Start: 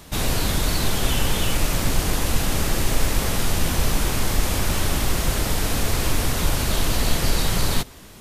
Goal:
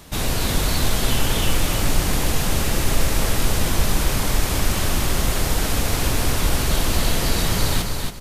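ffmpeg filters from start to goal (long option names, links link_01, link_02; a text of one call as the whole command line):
ffmpeg -i in.wav -af "aecho=1:1:276|552|828:0.596|0.143|0.0343" out.wav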